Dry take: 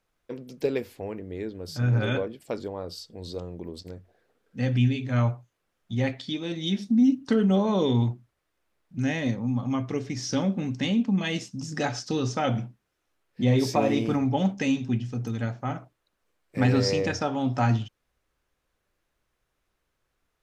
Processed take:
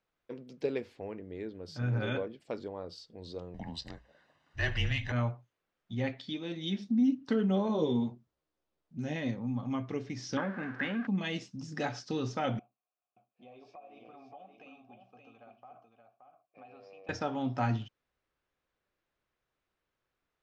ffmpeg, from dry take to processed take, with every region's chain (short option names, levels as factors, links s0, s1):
-filter_complex "[0:a]asettb=1/sr,asplit=3[s0][s1][s2];[s0]atrim=end=3.544[s3];[s1]atrim=start=3.54:end=5.12,asetpts=PTS-STARTPTS,afade=t=in:d=0.004:c=qsin,afade=t=out:st=1.576:d=0.004:c=qsin,aecho=1:1:1:0.73,atrim=end_sample=69678,asplit=2[s4][s5];[s5]highpass=f=720:p=1,volume=7.94,asoftclip=type=tanh:threshold=0.316[s6];[s4][s6]amix=inputs=2:normalize=0,lowpass=f=7000:p=1,volume=0.501,afreqshift=-150[s7];[s2]atrim=start=5.116[s8];[s3][s7]acrossfade=d=0.004:c1=hsin:c2=qsin[s9];[s9][s8]acrossfade=d=0.004:c1=qsin:c2=hsin,asettb=1/sr,asplit=3[s10][s11][s12];[s10]atrim=end=7.684[s13];[s11]atrim=start=7.68:end=9.16,asetpts=PTS-STARTPTS,afade=t=in:d=0.004:c=qsin,afade=t=out:st=1.476:d=0.004:c=qsin,equalizer=f=1900:w=0.8:g=-9.5,asplit=2[s14][s15];[s15]adelay=13,volume=0.708[s16];[s14][s16]amix=inputs=2:normalize=0,atrim=end_sample=65268[s17];[s12]atrim=start=9.156[s18];[s13][s17]acrossfade=d=0.004:c1=hsin:c2=qsin[s19];[s19][s18]acrossfade=d=0.004:c1=qsin:c2=hsin,asettb=1/sr,asplit=3[s20][s21][s22];[s20]atrim=end=10.374[s23];[s21]atrim=start=10.37:end=11.07,asetpts=PTS-STARTPTS,afade=t=in:d=0.004:c=qsin,afade=t=out:st=0.696:d=0.004:c=qsin,aeval=exprs='val(0)+0.5*0.0178*sgn(val(0))':c=same,lowpass=f=1600:t=q:w=7.6,aemphasis=mode=production:type=bsi[s24];[s22]atrim=start=11.066[s25];[s23][s24]acrossfade=d=0.004:c1=hsin:c2=qsin[s26];[s26][s25]acrossfade=d=0.004:c1=qsin:c2=hsin,asettb=1/sr,asplit=3[s27][s28][s29];[s27]atrim=end=12.594[s30];[s28]atrim=start=12.59:end=17.09,asetpts=PTS-STARTPTS,afade=t=in:d=0.004:c=qsin,afade=t=out:st=4.496:d=0.004:c=qsin,asplit=3[s31][s32][s33];[s31]bandpass=f=730:t=q:w=8,volume=1[s34];[s32]bandpass=f=1090:t=q:w=8,volume=0.501[s35];[s33]bandpass=f=2440:t=q:w=8,volume=0.355[s36];[s34][s35][s36]amix=inputs=3:normalize=0,acompressor=threshold=0.00631:ratio=4:attack=3.2:release=140:knee=1:detection=peak,aecho=1:1:574:0.473,atrim=end_sample=198450[s37];[s29]atrim=start=17.086[s38];[s30][s37]acrossfade=d=0.004:c1=hsin:c2=qsin[s39];[s39][s38]acrossfade=d=0.004:c1=qsin:c2=hsin,lowpass=4800,lowshelf=f=65:g=-10.5,volume=0.501"